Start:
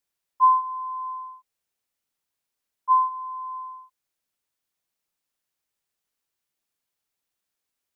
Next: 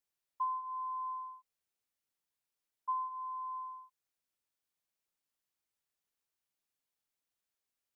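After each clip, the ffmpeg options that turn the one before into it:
ffmpeg -i in.wav -af "acompressor=threshold=-26dB:ratio=10,volume=-7dB" out.wav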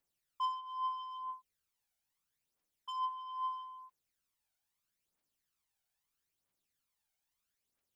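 ffmpeg -i in.wav -af "asoftclip=type=tanh:threshold=-39dB,aphaser=in_gain=1:out_gain=1:delay=1.4:decay=0.59:speed=0.77:type=triangular,volume=1dB" out.wav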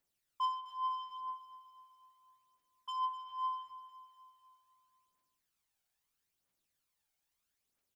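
ffmpeg -i in.wav -af "aecho=1:1:250|500|750|1000|1250|1500:0.224|0.13|0.0753|0.0437|0.0253|0.0147,volume=1dB" out.wav

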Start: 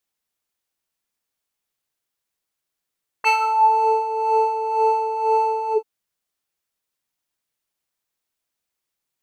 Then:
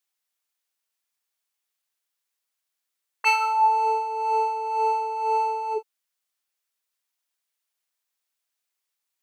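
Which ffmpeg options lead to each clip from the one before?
ffmpeg -i in.wav -af "highpass=frequency=1000:poles=1" out.wav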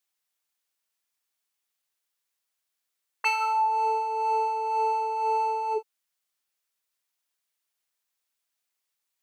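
ffmpeg -i in.wav -af "acompressor=threshold=-22dB:ratio=6" out.wav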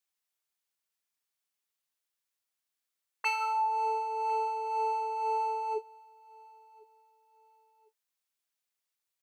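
ffmpeg -i in.wav -af "aecho=1:1:1052|2104:0.0631|0.0202,volume=-5dB" out.wav

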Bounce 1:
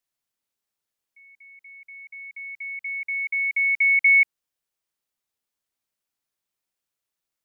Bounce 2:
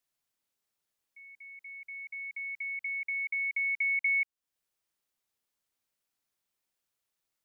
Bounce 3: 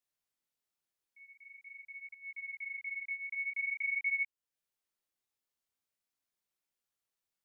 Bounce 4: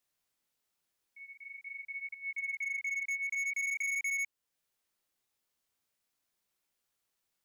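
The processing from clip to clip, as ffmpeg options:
ffmpeg -i in.wav -af "acompressor=threshold=-37dB:ratio=2" out.wav
ffmpeg -i in.wav -af "flanger=delay=16.5:depth=7.8:speed=0.46,volume=-2.5dB" out.wav
ffmpeg -i in.wav -af "asoftclip=type=hard:threshold=-38.5dB,volume=6.5dB" out.wav

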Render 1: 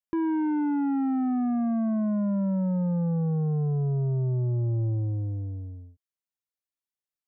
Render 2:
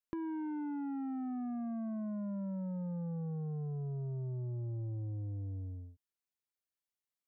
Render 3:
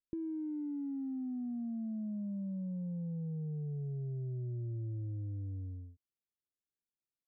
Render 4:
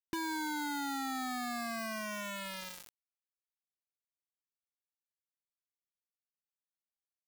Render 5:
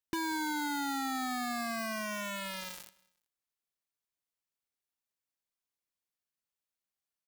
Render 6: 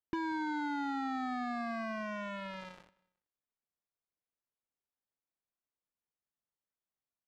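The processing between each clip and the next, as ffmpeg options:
ffmpeg -i in.wav -af "acompressor=threshold=-36dB:ratio=6,volume=-3dB" out.wav
ffmpeg -i in.wav -af "firequalizer=gain_entry='entry(370,0);entry(1100,-29);entry(2000,-17)':delay=0.05:min_phase=1" out.wav
ffmpeg -i in.wav -af "acrusher=bits=5:mix=0:aa=0.000001" out.wav
ffmpeg -i in.wav -af "aecho=1:1:187|374:0.0708|0.0219,volume=2.5dB" out.wav
ffmpeg -i in.wav -af "adynamicsmooth=sensitivity=1:basefreq=1800" out.wav

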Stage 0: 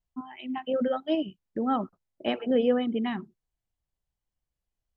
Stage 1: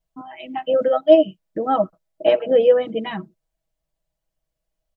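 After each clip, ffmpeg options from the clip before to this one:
ffmpeg -i in.wav -af "equalizer=frequency=610:width=4.9:gain=14.5,aecho=1:1:6.2:0.93,volume=2.5dB" out.wav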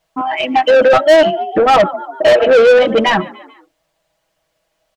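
ffmpeg -i in.wav -filter_complex "[0:a]asplit=4[link_01][link_02][link_03][link_04];[link_02]adelay=145,afreqshift=43,volume=-24dB[link_05];[link_03]adelay=290,afreqshift=86,volume=-30dB[link_06];[link_04]adelay=435,afreqshift=129,volume=-36dB[link_07];[link_01][link_05][link_06][link_07]amix=inputs=4:normalize=0,asplit=2[link_08][link_09];[link_09]highpass=frequency=720:poles=1,volume=29dB,asoftclip=type=tanh:threshold=-1dB[link_10];[link_08][link_10]amix=inputs=2:normalize=0,lowpass=frequency=3100:poles=1,volume=-6dB" out.wav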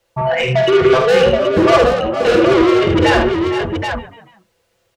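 ffmpeg -i in.wav -af "afreqshift=-130,asoftclip=type=tanh:threshold=-11.5dB,aecho=1:1:48|77|460|484|776:0.473|0.447|0.211|0.266|0.501,volume=1.5dB" out.wav

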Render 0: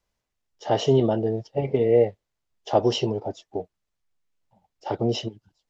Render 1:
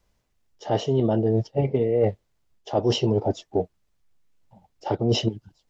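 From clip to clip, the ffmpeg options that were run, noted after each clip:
ffmpeg -i in.wav -af "lowshelf=frequency=400:gain=6.5,areverse,acompressor=threshold=-23dB:ratio=12,areverse,volume=5.5dB" out.wav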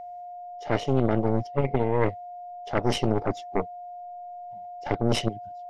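ffmpeg -i in.wav -af "aeval=exprs='0.355*(cos(1*acos(clip(val(0)/0.355,-1,1)))-cos(1*PI/2))+0.126*(cos(4*acos(clip(val(0)/0.355,-1,1)))-cos(4*PI/2))':channel_layout=same,aeval=exprs='val(0)+0.0251*sin(2*PI*710*n/s)':channel_layout=same,equalizer=frequency=2100:width=4:gain=9.5,volume=-5dB" out.wav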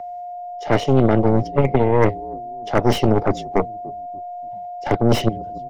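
ffmpeg -i in.wav -filter_complex "[0:a]acrossover=split=120|810|1600[link_01][link_02][link_03][link_04];[link_02]asplit=4[link_05][link_06][link_07][link_08];[link_06]adelay=291,afreqshift=-48,volume=-17.5dB[link_09];[link_07]adelay=582,afreqshift=-96,volume=-25.9dB[link_10];[link_08]adelay=873,afreqshift=-144,volume=-34.3dB[link_11];[link_05][link_09][link_10][link_11]amix=inputs=4:normalize=0[link_12];[link_04]asoftclip=type=hard:threshold=-33dB[link_13];[link_01][link_12][link_03][link_13]amix=inputs=4:normalize=0,volume=8dB" out.wav

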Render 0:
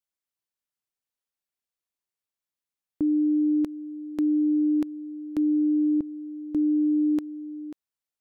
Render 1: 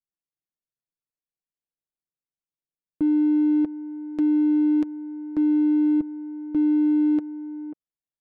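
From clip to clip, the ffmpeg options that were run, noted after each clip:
ffmpeg -i in.wav -af "aecho=1:1:6.4:0.42,adynamicsmooth=sensitivity=3.5:basefreq=560" out.wav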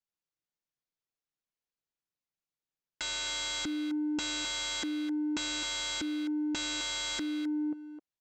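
ffmpeg -i in.wav -filter_complex "[0:a]aresample=16000,aeval=exprs='(mod(28.2*val(0)+1,2)-1)/28.2':channel_layout=same,aresample=44100,asplit=2[link_01][link_02];[link_02]adelay=260,highpass=300,lowpass=3400,asoftclip=type=hard:threshold=-35.5dB,volume=-7dB[link_03];[link_01][link_03]amix=inputs=2:normalize=0" out.wav

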